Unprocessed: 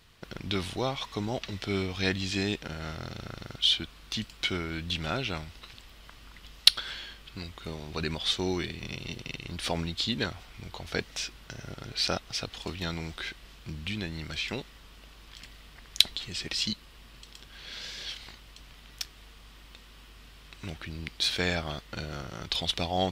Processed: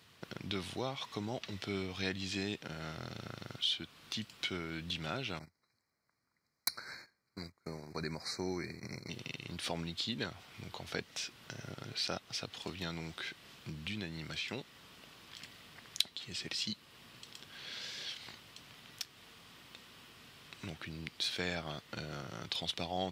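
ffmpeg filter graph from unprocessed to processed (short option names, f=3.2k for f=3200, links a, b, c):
-filter_complex "[0:a]asettb=1/sr,asplit=3[a][b][c];[a]atrim=end=5.394[d];[b]atrim=start=5.39:end=9.1,asetpts=PTS-STARTPTS,afade=t=in:d=0.004:c=qsin,afade=t=out:st=3.706:d=0.004:c=qsin,agate=range=-26dB:threshold=-41dB:ratio=16:release=100:detection=peak,aeval=exprs='0.335*(abs(mod(val(0)/0.335+3,4)-2)-1)':c=same,asuperstop=centerf=3100:order=20:qfactor=2[e];[c]atrim=start=9.096[f];[d][e]acrossfade=d=0.004:c1=hsin:c2=qsin[g];[g][f]acrossfade=d=0.004:c1=qsin:c2=hsin,highpass=f=97:w=0.5412,highpass=f=97:w=1.3066,acompressor=threshold=-43dB:ratio=1.5,volume=-1.5dB"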